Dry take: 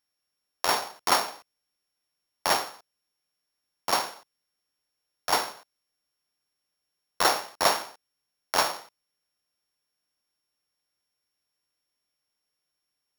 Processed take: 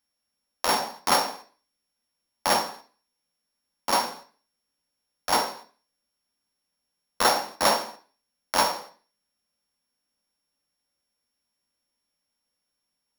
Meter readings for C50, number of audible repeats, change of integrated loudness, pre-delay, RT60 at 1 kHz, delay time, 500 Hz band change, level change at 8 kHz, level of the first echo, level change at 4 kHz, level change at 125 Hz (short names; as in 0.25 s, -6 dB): 13.0 dB, none, +1.5 dB, 3 ms, 0.40 s, none, +2.5 dB, +1.5 dB, none, +1.5 dB, +3.5 dB